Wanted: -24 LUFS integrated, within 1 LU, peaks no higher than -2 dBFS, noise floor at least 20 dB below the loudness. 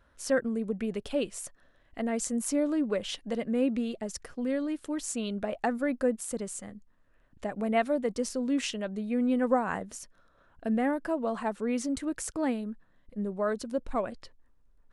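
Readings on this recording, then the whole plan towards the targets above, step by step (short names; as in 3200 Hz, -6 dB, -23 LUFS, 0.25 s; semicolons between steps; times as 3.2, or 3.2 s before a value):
loudness -31.0 LUFS; peak -13.0 dBFS; loudness target -24.0 LUFS
-> gain +7 dB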